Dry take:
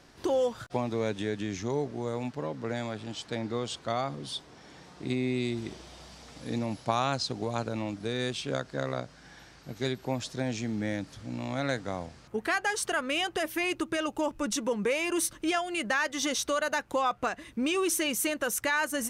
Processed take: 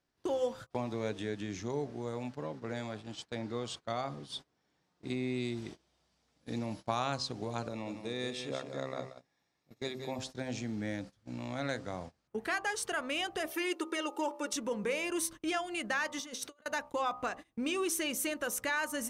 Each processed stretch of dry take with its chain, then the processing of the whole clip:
0:07.68–0:10.19: notch comb filter 1,500 Hz + single-tap delay 180 ms −8 dB
0:13.51–0:14.53: linear-phase brick-wall high-pass 200 Hz + comb filter 2.2 ms, depth 81%
0:16.19–0:16.66: high-pass filter 160 Hz + compressor whose output falls as the input rises −36 dBFS, ratio −0.5
whole clip: hum removal 65.32 Hz, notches 19; noise gate −39 dBFS, range −21 dB; level −5 dB

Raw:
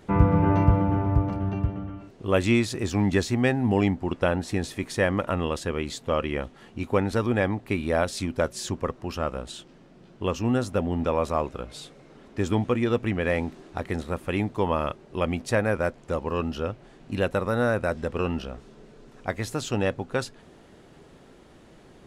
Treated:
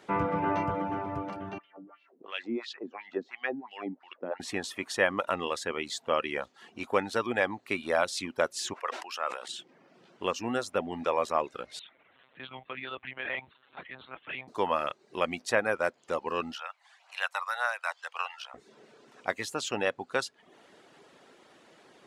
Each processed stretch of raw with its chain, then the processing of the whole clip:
0:01.58–0:04.40: band-pass filter 160–5,000 Hz + LFO wah 2.9 Hz 240–3,500 Hz, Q 2.2
0:08.73–0:09.48: high-pass filter 750 Hz + level that may fall only so fast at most 59 dB per second
0:11.79–0:14.48: transient designer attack −6 dB, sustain +1 dB + parametric band 330 Hz −13.5 dB 2.9 octaves + one-pitch LPC vocoder at 8 kHz 130 Hz
0:16.54–0:18.54: Butterworth high-pass 750 Hz + phase shifter 1.8 Hz, delay 1.1 ms, feedback 28%
whole clip: reverb reduction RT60 0.52 s; meter weighting curve A

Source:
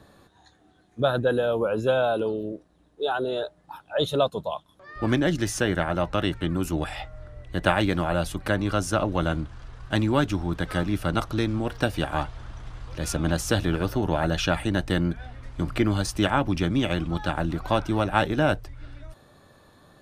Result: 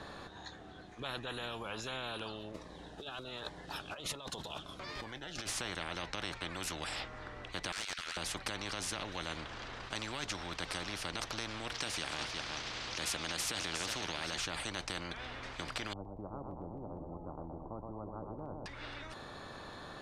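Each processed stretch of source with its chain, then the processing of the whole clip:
0:02.54–0:05.49: one scale factor per block 7 bits + compressor whose output falls as the input rises −36 dBFS + phaser whose notches keep moving one way falling 1.3 Hz
0:07.72–0:08.17: Chebyshev high-pass filter 1,300 Hz, order 8 + hard clipping −32.5 dBFS
0:11.74–0:14.38: meter weighting curve D + single-tap delay 361 ms −14.5 dB
0:15.93–0:18.66: Gaussian smoothing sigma 16 samples + repeating echo 121 ms, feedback 52%, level −8.5 dB
whole clip: low-pass filter 5,400 Hz 12 dB per octave; brickwall limiter −17 dBFS; every bin compressed towards the loudest bin 4 to 1; level −1.5 dB

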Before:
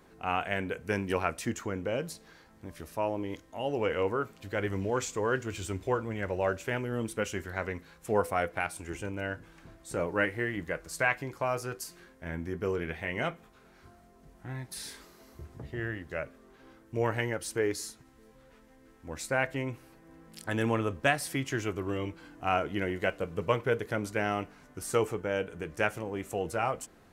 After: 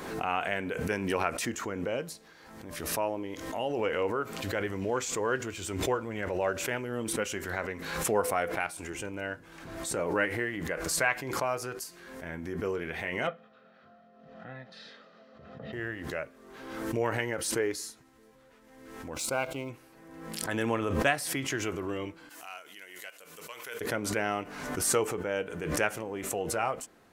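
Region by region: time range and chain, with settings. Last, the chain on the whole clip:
0:13.27–0:15.73: loudspeaker in its box 180–3,700 Hz, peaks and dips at 210 Hz +9 dB, 360 Hz −9 dB, 510 Hz +6 dB, 990 Hz −6 dB, 1,500 Hz +3 dB, 2,200 Hz −7 dB + comb filter 1.6 ms, depth 44%
0:19.14–0:19.70: mu-law and A-law mismatch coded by A + Butterworth band-reject 1,800 Hz, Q 2.7
0:22.29–0:23.81: first difference + saturating transformer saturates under 1,100 Hz
whole clip: low-shelf EQ 130 Hz −11 dB; background raised ahead of every attack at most 45 dB per second

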